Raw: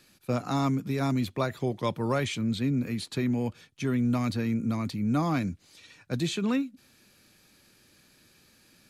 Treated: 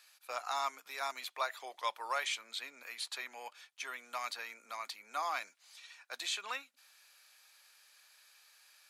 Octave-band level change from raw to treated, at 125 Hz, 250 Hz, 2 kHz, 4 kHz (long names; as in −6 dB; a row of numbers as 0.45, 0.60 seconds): below −40 dB, −39.0 dB, −1.5 dB, −1.5 dB